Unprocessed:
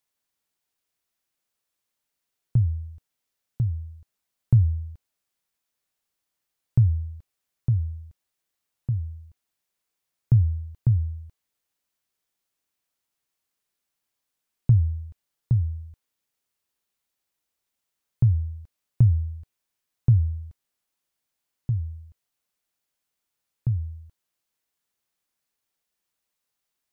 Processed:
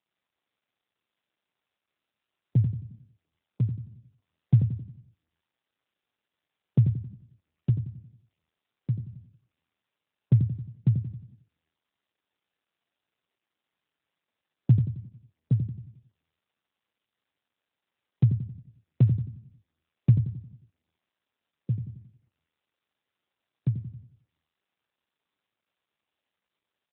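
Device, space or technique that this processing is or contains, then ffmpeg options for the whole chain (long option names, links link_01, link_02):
mobile call with aggressive noise cancelling: -filter_complex "[0:a]asplit=3[link_01][link_02][link_03];[link_01]afade=type=out:start_time=2.57:duration=0.02[link_04];[link_02]adynamicequalizer=threshold=0.0316:dfrequency=110:dqfactor=1.4:tfrequency=110:tqfactor=1.4:attack=5:release=100:ratio=0.375:range=1.5:mode=boostabove:tftype=bell,afade=type=in:start_time=2.57:duration=0.02,afade=type=out:start_time=3.69:duration=0.02[link_05];[link_03]afade=type=in:start_time=3.69:duration=0.02[link_06];[link_04][link_05][link_06]amix=inputs=3:normalize=0,highpass=frequency=140:width=0.5412,highpass=frequency=140:width=1.3066,aecho=1:1:89|178|267|356|445|534:0.473|0.237|0.118|0.0591|0.0296|0.0148,afftdn=noise_reduction=16:noise_floor=-44,volume=5.5dB" -ar 8000 -c:a libopencore_amrnb -b:a 7950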